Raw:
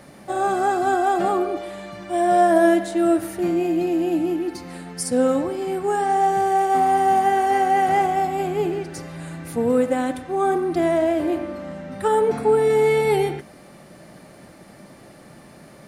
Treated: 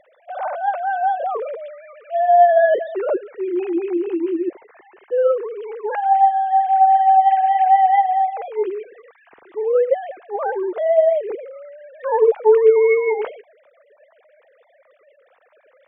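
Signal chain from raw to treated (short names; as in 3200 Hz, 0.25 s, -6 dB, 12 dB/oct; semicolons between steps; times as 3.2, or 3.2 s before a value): sine-wave speech; dynamic EQ 590 Hz, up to +7 dB, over -33 dBFS, Q 3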